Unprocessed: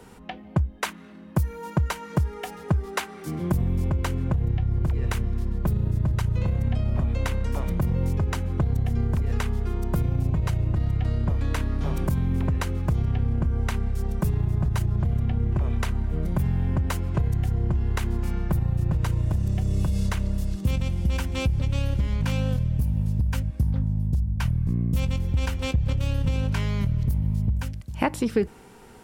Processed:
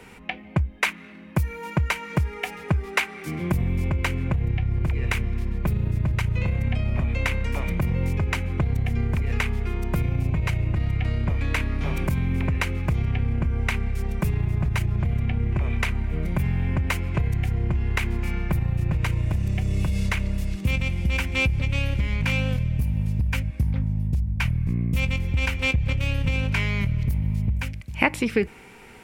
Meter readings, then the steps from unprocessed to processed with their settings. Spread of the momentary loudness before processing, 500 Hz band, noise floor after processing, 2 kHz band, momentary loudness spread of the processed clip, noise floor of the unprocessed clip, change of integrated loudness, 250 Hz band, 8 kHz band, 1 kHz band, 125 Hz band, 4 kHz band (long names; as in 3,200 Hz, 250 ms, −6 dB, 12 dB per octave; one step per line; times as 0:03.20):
3 LU, 0.0 dB, −43 dBFS, +9.5 dB, 4 LU, −44 dBFS, +0.5 dB, 0.0 dB, +0.5 dB, +1.0 dB, 0.0 dB, +5.0 dB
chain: parametric band 2,300 Hz +14 dB 0.68 octaves